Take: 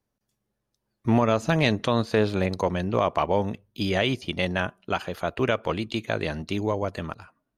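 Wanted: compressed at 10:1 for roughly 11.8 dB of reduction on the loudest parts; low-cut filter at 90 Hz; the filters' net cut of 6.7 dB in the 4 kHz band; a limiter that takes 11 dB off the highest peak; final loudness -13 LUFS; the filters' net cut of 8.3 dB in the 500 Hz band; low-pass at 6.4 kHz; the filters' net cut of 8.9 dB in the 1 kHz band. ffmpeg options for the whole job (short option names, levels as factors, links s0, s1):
-af "highpass=90,lowpass=6400,equalizer=f=500:t=o:g=-8,equalizer=f=1000:t=o:g=-8.5,equalizer=f=4000:t=o:g=-8,acompressor=threshold=0.0316:ratio=10,volume=21.1,alimiter=limit=0.891:level=0:latency=1"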